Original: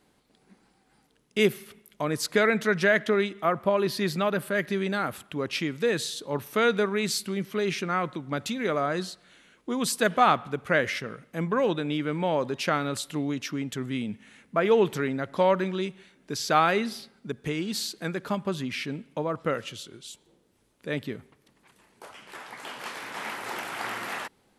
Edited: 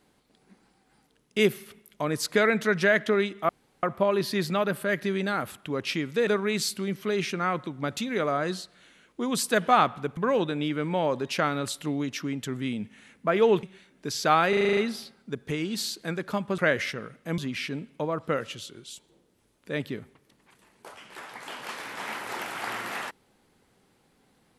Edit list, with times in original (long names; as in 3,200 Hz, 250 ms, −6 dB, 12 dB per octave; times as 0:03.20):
0:03.49: splice in room tone 0.34 s
0:05.93–0:06.76: remove
0:10.66–0:11.46: move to 0:18.55
0:14.92–0:15.88: remove
0:16.74: stutter 0.04 s, 8 plays